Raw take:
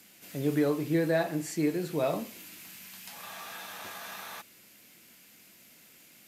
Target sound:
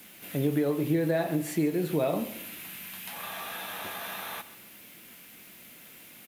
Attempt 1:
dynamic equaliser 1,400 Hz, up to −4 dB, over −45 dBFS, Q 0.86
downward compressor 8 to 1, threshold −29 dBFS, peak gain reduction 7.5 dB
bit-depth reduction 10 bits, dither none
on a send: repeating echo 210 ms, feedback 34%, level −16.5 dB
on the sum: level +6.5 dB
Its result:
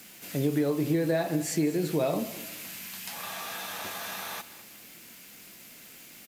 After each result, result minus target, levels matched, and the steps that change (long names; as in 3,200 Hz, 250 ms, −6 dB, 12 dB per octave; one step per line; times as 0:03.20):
echo 74 ms late; 8,000 Hz band +4.5 dB
change: repeating echo 136 ms, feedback 34%, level −16.5 dB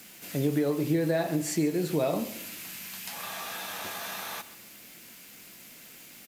8,000 Hz band +4.5 dB
add after downward compressor: flat-topped bell 6,000 Hz −9 dB 1.1 octaves